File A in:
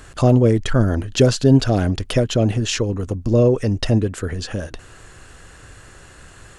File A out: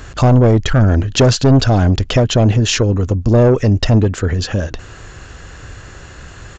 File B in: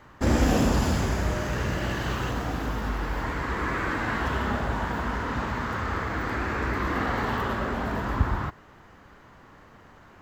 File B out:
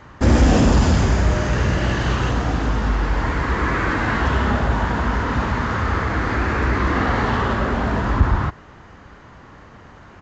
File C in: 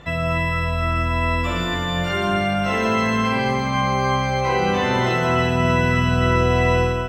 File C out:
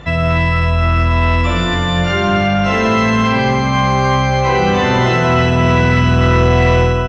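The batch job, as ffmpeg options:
-af "highpass=f=56:p=1,lowshelf=f=96:g=9.5,aresample=16000,asoftclip=type=tanh:threshold=-12dB,aresample=44100,volume=7dB"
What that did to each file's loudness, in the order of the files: +5.0, +8.0, +6.5 LU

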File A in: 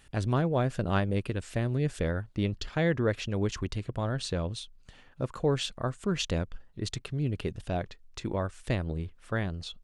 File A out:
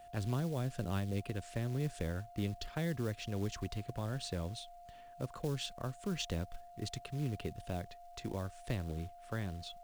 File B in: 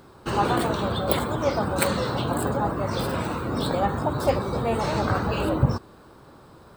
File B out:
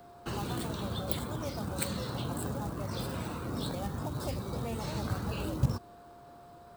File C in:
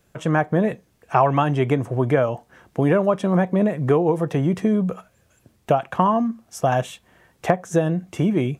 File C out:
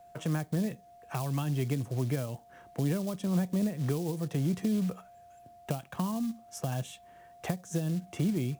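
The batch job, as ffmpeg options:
-filter_complex "[0:a]aeval=exprs='val(0)+0.00562*sin(2*PI*700*n/s)':c=same,acrusher=bits=5:mode=log:mix=0:aa=0.000001,acrossover=split=260|3000[a][b][c];[b]acompressor=threshold=-32dB:ratio=6[d];[a][d][c]amix=inputs=3:normalize=0,volume=-7dB"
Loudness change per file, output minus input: -8.5, -10.5, -11.5 LU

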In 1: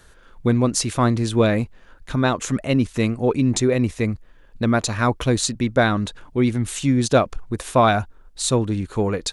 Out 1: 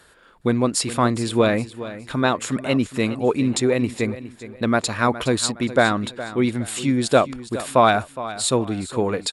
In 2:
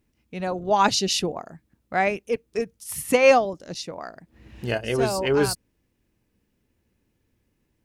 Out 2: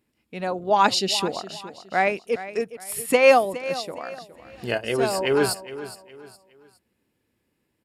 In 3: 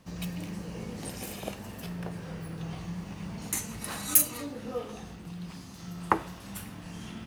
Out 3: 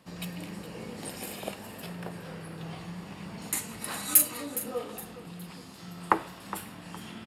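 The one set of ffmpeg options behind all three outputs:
-filter_complex "[0:a]highpass=f=240:p=1,bandreject=f=6.1k:w=5.1,asplit=2[a][b];[b]aecho=0:1:414|828|1242:0.188|0.0622|0.0205[c];[a][c]amix=inputs=2:normalize=0,aresample=32000,aresample=44100,volume=1.5dB"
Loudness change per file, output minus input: -0.5, +0.5, +1.0 LU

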